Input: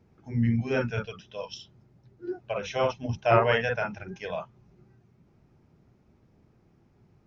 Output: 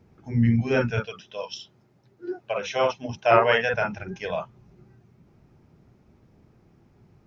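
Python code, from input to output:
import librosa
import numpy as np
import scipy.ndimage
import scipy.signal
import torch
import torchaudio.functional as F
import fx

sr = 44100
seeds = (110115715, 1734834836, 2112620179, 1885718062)

y = fx.highpass(x, sr, hz=330.0, slope=6, at=(1.0, 3.74))
y = y * librosa.db_to_amplitude(4.5)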